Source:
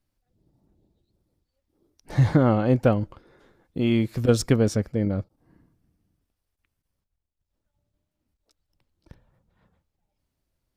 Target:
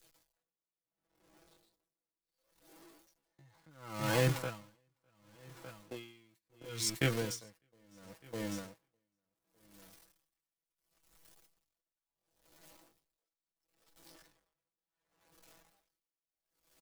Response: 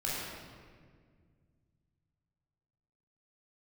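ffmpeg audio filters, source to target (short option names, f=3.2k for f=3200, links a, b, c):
-filter_complex "[0:a]aeval=exprs='val(0)+0.5*0.0422*sgn(val(0))':c=same,agate=range=-30dB:threshold=-22dB:ratio=16:detection=peak,bass=f=250:g=-13,treble=f=4k:g=3,aecho=1:1:6.1:0.6,adynamicequalizer=threshold=0.00631:dfrequency=960:dqfactor=4.4:tfrequency=960:tqfactor=4.4:attack=5:release=100:ratio=0.375:range=3:mode=boostabove:tftype=bell,acrossover=split=190|1400|3500[a][b][c][d];[b]acompressor=threshold=-32dB:ratio=16[e];[a][e][c][d]amix=inputs=4:normalize=0,alimiter=limit=-23dB:level=0:latency=1:release=487,dynaudnorm=f=450:g=5:m=6dB,atempo=0.64,aecho=1:1:604|1208|1812:0.316|0.0885|0.0248,aeval=exprs='val(0)*pow(10,-39*(0.5-0.5*cos(2*PI*0.71*n/s))/20)':c=same"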